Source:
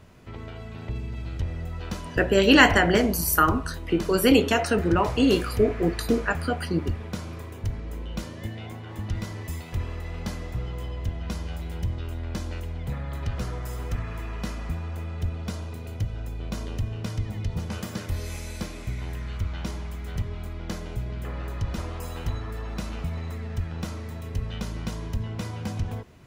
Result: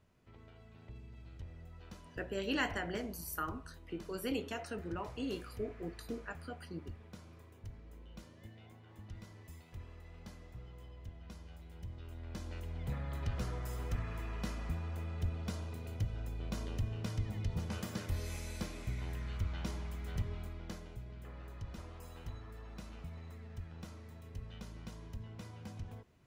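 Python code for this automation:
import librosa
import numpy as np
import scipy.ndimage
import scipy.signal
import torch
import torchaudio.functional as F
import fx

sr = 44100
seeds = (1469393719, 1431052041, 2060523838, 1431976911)

y = fx.gain(x, sr, db=fx.line((11.7, -19.0), (12.88, -7.5), (20.33, -7.5), (20.99, -16.0)))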